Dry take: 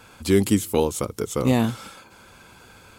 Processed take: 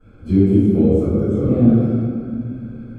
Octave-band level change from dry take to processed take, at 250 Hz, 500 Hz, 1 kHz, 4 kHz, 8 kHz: +9.0 dB, +4.0 dB, −7.0 dB, below −15 dB, below −25 dB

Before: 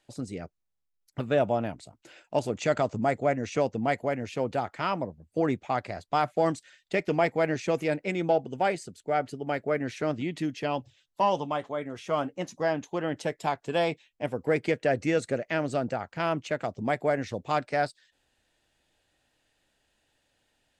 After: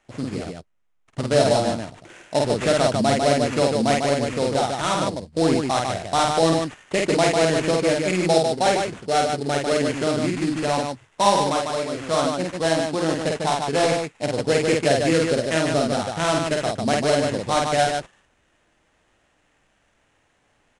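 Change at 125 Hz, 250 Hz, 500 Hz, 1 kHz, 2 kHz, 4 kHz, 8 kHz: +8.0, +8.0, +7.5, +7.0, +6.5, +15.0, +17.5 decibels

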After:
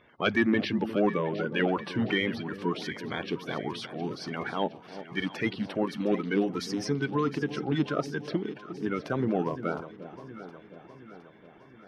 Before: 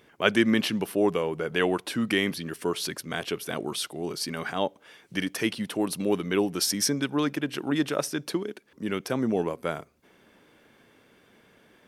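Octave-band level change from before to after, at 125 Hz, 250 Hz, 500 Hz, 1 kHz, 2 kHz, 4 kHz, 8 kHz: +1.5, −1.5, −2.0, 0.0, −2.0, −6.5, −16.5 decibels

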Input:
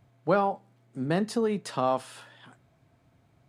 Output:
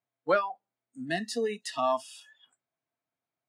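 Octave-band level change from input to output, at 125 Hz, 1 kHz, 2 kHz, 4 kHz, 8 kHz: −12.5, −2.0, +3.0, +2.5, +1.5 decibels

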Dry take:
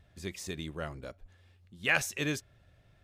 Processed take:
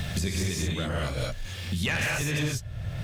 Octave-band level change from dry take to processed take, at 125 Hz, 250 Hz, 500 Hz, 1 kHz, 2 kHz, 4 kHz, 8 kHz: +14.5, +8.0, +5.5, +4.0, +2.5, +8.0, +7.0 decibels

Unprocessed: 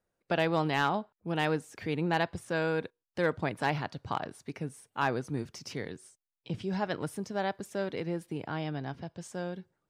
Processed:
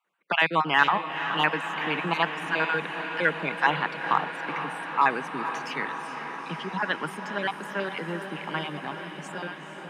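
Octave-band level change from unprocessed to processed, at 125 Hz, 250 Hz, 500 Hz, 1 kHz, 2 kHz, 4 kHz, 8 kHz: −3.0, −0.5, 0.0, +8.5, +10.5, +9.0, −1.0 decibels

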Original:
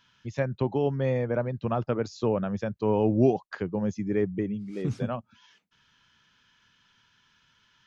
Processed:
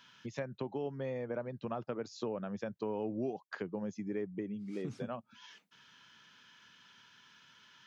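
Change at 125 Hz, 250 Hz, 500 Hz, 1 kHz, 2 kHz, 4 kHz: −15.5, −11.5, −11.0, −11.0, −8.0, −4.5 decibels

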